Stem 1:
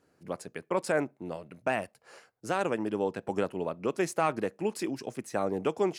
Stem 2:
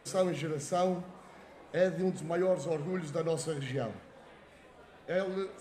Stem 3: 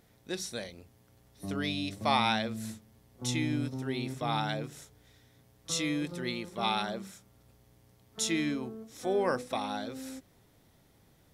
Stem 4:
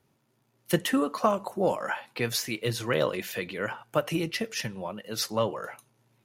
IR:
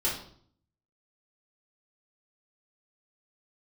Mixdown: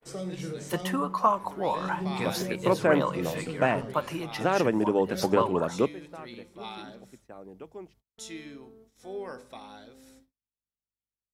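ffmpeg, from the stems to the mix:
-filter_complex "[0:a]acrossover=split=3600[a][b];[b]acompressor=threshold=-54dB:ratio=4:attack=1:release=60[c];[a][c]amix=inputs=2:normalize=0,lowshelf=f=410:g=5.5,bandreject=f=50:t=h:w=6,bandreject=f=100:t=h:w=6,bandreject=f=150:t=h:w=6,bandreject=f=200:t=h:w=6,adelay=1950,volume=3dB[d];[1:a]highshelf=f=2.8k:g=-5.5,acrossover=split=270|3000[e][f][g];[f]acompressor=threshold=-40dB:ratio=6[h];[e][h][g]amix=inputs=3:normalize=0,volume=-2.5dB,asplit=2[i][j];[j]volume=-10dB[k];[2:a]aeval=exprs='val(0)+0.00141*(sin(2*PI*50*n/s)+sin(2*PI*2*50*n/s)/2+sin(2*PI*3*50*n/s)/3+sin(2*PI*4*50*n/s)/4+sin(2*PI*5*50*n/s)/5)':c=same,volume=-12dB,asplit=2[l][m];[m]volume=-17dB[n];[3:a]equalizer=f=1k:w=2.3:g=14,volume=-6.5dB,asplit=2[o][p];[p]apad=whole_len=350119[q];[d][q]sidechaingate=range=-21dB:threshold=-58dB:ratio=16:detection=peak[r];[4:a]atrim=start_sample=2205[s];[k][n]amix=inputs=2:normalize=0[t];[t][s]afir=irnorm=-1:irlink=0[u];[r][i][l][o][u]amix=inputs=5:normalize=0,agate=range=-35dB:threshold=-59dB:ratio=16:detection=peak"

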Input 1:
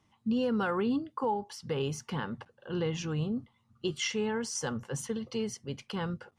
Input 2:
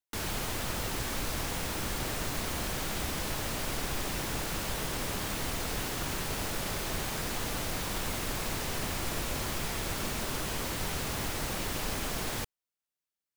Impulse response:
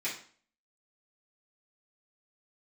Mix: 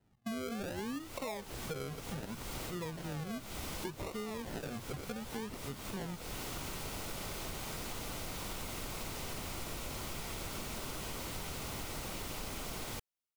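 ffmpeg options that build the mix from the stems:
-filter_complex "[0:a]acrusher=samples=38:mix=1:aa=0.000001:lfo=1:lforange=22.8:lforate=0.66,volume=-2.5dB,asplit=2[a][b];[1:a]bandreject=f=1.7k:w=7.8,adelay=550,volume=-3.5dB[c];[b]apad=whole_len=613587[d];[c][d]sidechaincompress=threshold=-47dB:ratio=4:attack=23:release=285[e];[a][e]amix=inputs=2:normalize=0,acompressor=threshold=-38dB:ratio=4"

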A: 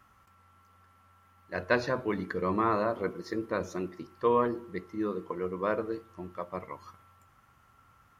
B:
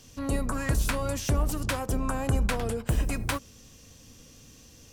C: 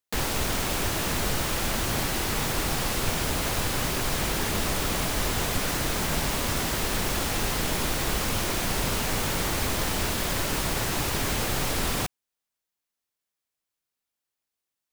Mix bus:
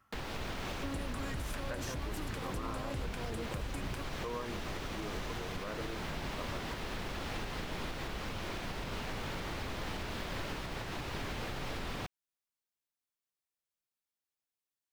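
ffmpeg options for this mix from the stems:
-filter_complex "[0:a]volume=-8.5dB[a];[1:a]acompressor=threshold=-27dB:ratio=6,acrossover=split=340[b][c];[c]acompressor=threshold=-36dB:ratio=6[d];[b][d]amix=inputs=2:normalize=0,adelay=650,volume=-1.5dB[e];[2:a]acrossover=split=4700[f][g];[g]acompressor=threshold=-49dB:ratio=4:attack=1:release=60[h];[f][h]amix=inputs=2:normalize=0,volume=-8.5dB[i];[a][e][i]amix=inputs=3:normalize=0,alimiter=level_in=5dB:limit=-24dB:level=0:latency=1:release=198,volume=-5dB"

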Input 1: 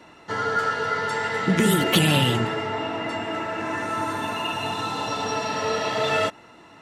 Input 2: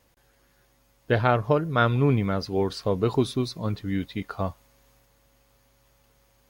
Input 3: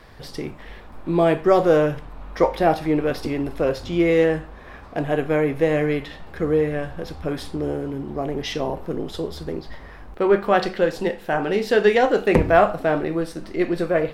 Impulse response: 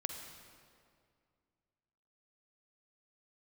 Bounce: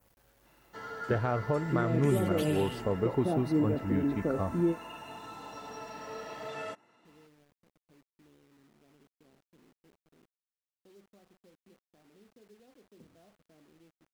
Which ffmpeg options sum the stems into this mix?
-filter_complex "[0:a]highpass=130,adelay=450,volume=-16.5dB[a];[1:a]equalizer=f=5k:w=0.54:g=-10,volume=-3dB,asplit=2[b][c];[2:a]acompressor=threshold=-22dB:ratio=1.5,bandpass=f=220:t=q:w=1.6:csg=0,adelay=650,volume=0dB[d];[c]apad=whole_len=652121[e];[d][e]sidechaingate=range=-32dB:threshold=-58dB:ratio=16:detection=peak[f];[b][f]amix=inputs=2:normalize=0,acrusher=bits=10:mix=0:aa=0.000001,alimiter=limit=-18dB:level=0:latency=1:release=211,volume=0dB[g];[a][g]amix=inputs=2:normalize=0,adynamicequalizer=threshold=0.00112:dfrequency=3600:dqfactor=1.5:tfrequency=3600:tqfactor=1.5:attack=5:release=100:ratio=0.375:range=3:mode=cutabove:tftype=bell"

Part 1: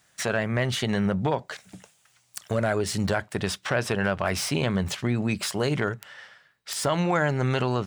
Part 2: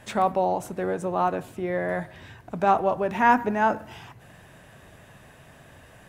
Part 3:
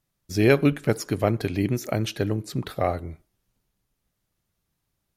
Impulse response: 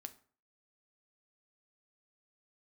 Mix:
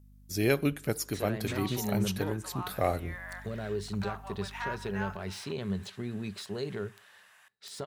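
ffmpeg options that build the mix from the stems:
-filter_complex "[0:a]equalizer=f=100:t=o:w=0.33:g=11,equalizer=f=200:t=o:w=0.33:g=11,equalizer=f=400:t=o:w=0.33:g=12,equalizer=f=4k:t=o:w=0.33:g=10,adelay=950,volume=-18.5dB,asplit=2[a][b];[b]volume=-6dB[c];[1:a]acompressor=threshold=-25dB:ratio=6,highpass=f=1k:w=0.5412,highpass=f=1k:w=1.3066,adelay=1400,volume=-7dB,asplit=2[d][e];[e]volume=-5dB[f];[2:a]aemphasis=mode=production:type=50kf,aeval=exprs='val(0)+0.00501*(sin(2*PI*50*n/s)+sin(2*PI*2*50*n/s)/2+sin(2*PI*3*50*n/s)/3+sin(2*PI*4*50*n/s)/4+sin(2*PI*5*50*n/s)/5)':c=same,volume=-1.5dB,afade=t=in:st=2.55:d=0.59:silence=0.446684[g];[3:a]atrim=start_sample=2205[h];[c][f]amix=inputs=2:normalize=0[i];[i][h]afir=irnorm=-1:irlink=0[j];[a][d][g][j]amix=inputs=4:normalize=0"

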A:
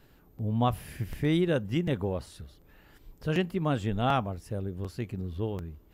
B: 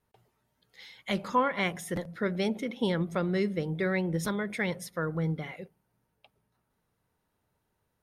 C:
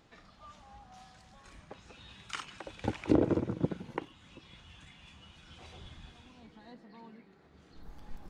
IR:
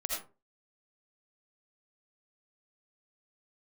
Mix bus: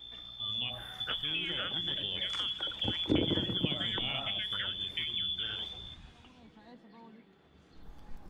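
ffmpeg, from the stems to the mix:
-filter_complex "[0:a]dynaudnorm=f=490:g=7:m=7.5dB,aeval=exprs='val(0)+0.01*(sin(2*PI*60*n/s)+sin(2*PI*2*60*n/s)/2+sin(2*PI*3*60*n/s)/3+sin(2*PI*4*60*n/s)/4+sin(2*PI*5*60*n/s)/5)':c=same,volume=-8dB,asplit=2[a][b];[b]volume=-15.5dB[c];[1:a]volume=0dB[d];[2:a]highshelf=f=4.5k:g=-6.5,volume=-1.5dB[e];[a][d]amix=inputs=2:normalize=0,lowpass=f=3.1k:t=q:w=0.5098,lowpass=f=3.1k:t=q:w=0.6013,lowpass=f=3.1k:t=q:w=0.9,lowpass=f=3.1k:t=q:w=2.563,afreqshift=-3600,acompressor=threshold=-29dB:ratio=6,volume=0dB[f];[3:a]atrim=start_sample=2205[g];[c][g]afir=irnorm=-1:irlink=0[h];[e][f][h]amix=inputs=3:normalize=0,highshelf=f=6.8k:g=7,acrossover=split=310[i][j];[j]acompressor=threshold=-33dB:ratio=2.5[k];[i][k]amix=inputs=2:normalize=0"

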